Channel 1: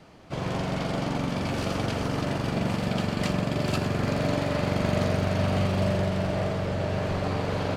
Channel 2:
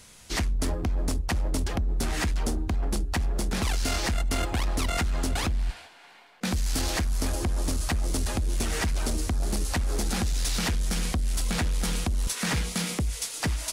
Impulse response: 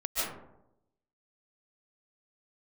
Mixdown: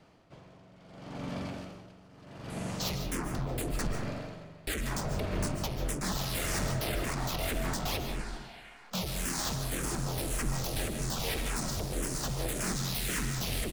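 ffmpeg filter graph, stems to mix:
-filter_complex "[0:a]asoftclip=type=tanh:threshold=-21dB,aeval=exprs='val(0)*pow(10,-21*(0.5-0.5*cos(2*PI*0.75*n/s))/20)':c=same,volume=-9dB,asplit=2[a][b];[b]volume=-14.5dB[c];[1:a]aeval=exprs='0.0398*(abs(mod(val(0)/0.0398+3,4)-2)-1)':c=same,asplit=2[d][e];[e]afreqshift=-1.8[f];[d][f]amix=inputs=2:normalize=1,adelay=2500,volume=1.5dB,asplit=3[g][h][i];[g]atrim=end=3.87,asetpts=PTS-STARTPTS,afade=t=out:st=3.866:d=0.004:c=hsin[j];[h]atrim=start=3.87:end=4.67,asetpts=PTS-STARTPTS,volume=0[k];[i]atrim=start=4.67,asetpts=PTS-STARTPTS,afade=t=in:d=0.004:c=hsin[l];[j][k][l]concat=n=3:v=0:a=1,asplit=2[m][n];[n]volume=-11.5dB[o];[2:a]atrim=start_sample=2205[p];[c][o]amix=inputs=2:normalize=0[q];[q][p]afir=irnorm=-1:irlink=0[r];[a][m][r]amix=inputs=3:normalize=0"

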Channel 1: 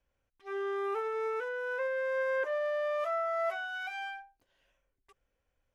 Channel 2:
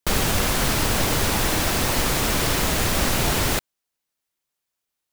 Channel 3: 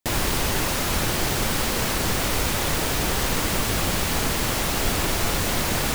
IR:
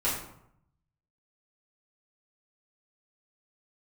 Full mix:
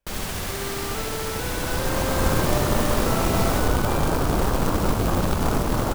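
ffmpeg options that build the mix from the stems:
-filter_complex "[0:a]volume=-0.5dB[a];[1:a]volume=-10.5dB,asplit=2[b][c];[c]volume=-3.5dB[d];[2:a]afwtdn=0.0631,dynaudnorm=f=240:g=5:m=14dB,adelay=1300,volume=-7dB,asplit=2[e][f];[f]volume=-15.5dB[g];[d][g]amix=inputs=2:normalize=0,aecho=0:1:70|140|210|280|350|420|490|560:1|0.53|0.281|0.149|0.0789|0.0418|0.0222|0.0117[h];[a][b][e][h]amix=inputs=4:normalize=0,acrusher=bits=3:mode=log:mix=0:aa=0.000001"

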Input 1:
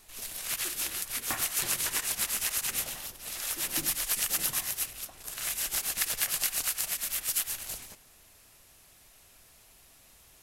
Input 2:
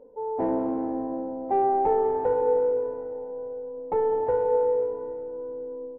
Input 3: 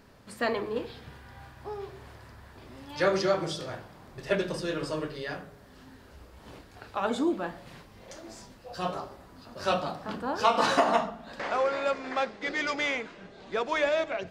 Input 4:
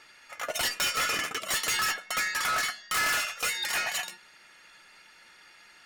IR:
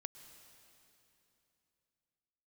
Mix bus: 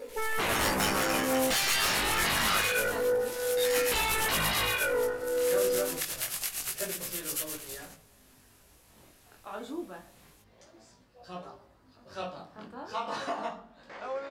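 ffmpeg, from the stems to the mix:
-filter_complex "[0:a]volume=-1dB[a];[1:a]bass=f=250:g=-5,treble=f=4k:g=14,aeval=exprs='0.211*sin(PI/2*7.94*val(0)/0.211)':c=same,volume=-10dB[b];[2:a]adelay=2500,volume=-8dB[c];[3:a]aeval=exprs='val(0)*sin(2*PI*51*n/s)':c=same,volume=1.5dB,asplit=3[d][e][f];[d]atrim=end=2.86,asetpts=PTS-STARTPTS,afade=t=out:st=2.856:d=0.004:c=hsin[g];[e]atrim=start=2.86:end=3.57,asetpts=PTS-STARTPTS,volume=0[h];[f]atrim=start=3.57,asetpts=PTS-STARTPTS,afade=t=in:d=0.004:c=hsin[i];[g][h][i]concat=n=3:v=0:a=1[j];[a][b][c][j]amix=inputs=4:normalize=0,flanger=delay=16.5:depth=7.5:speed=0.27"

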